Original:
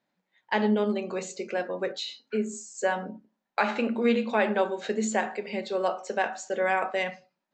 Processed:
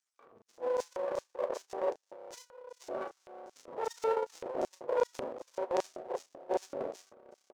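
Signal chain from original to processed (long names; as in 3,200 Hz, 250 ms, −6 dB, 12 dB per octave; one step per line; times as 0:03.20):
frequency axis turned over on the octave scale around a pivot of 460 Hz
downward compressor 6 to 1, threshold −25 dBFS, peak gain reduction 7.5 dB
high-pass filter 140 Hz 12 dB per octave
notch filter 1,000 Hz, Q 6.3
spring reverb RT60 2.8 s, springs 30 ms, chirp 70 ms, DRR 13 dB
upward compression, threshold −34 dBFS
mains-hum notches 60/120/180/240/300/360/420/480/540 Hz
transient designer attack +10 dB, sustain −11 dB
half-wave rectification
auto-filter high-pass square 2.6 Hz 530–6,200 Hz
double-tracking delay 34 ms −11 dB
transient designer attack −6 dB, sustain +10 dB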